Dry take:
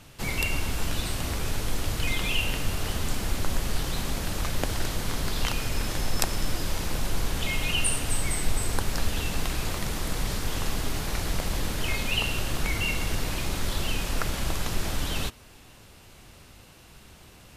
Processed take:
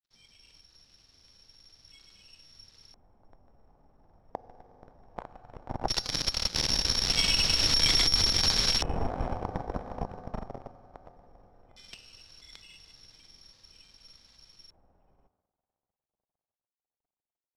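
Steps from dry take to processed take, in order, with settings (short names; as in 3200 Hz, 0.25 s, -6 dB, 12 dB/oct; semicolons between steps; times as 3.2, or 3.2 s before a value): Doppler pass-by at 7.98, 16 m/s, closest 1.1 m; in parallel at -3 dB: fuzz box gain 46 dB, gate -51 dBFS; on the sum: high shelf 3400 Hz +11 dB; on a send at -12 dB: reverb RT60 4.1 s, pre-delay 3 ms; on the sum: grains 0.1 s, grains 20/s, pitch spread up and down by 0 st; companded quantiser 8-bit; careless resampling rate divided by 8×, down filtered, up zero stuff; LFO low-pass square 0.17 Hz 780–4300 Hz; compressor 3:1, threshold -30 dBFS, peak gain reduction 16 dB; gain +4 dB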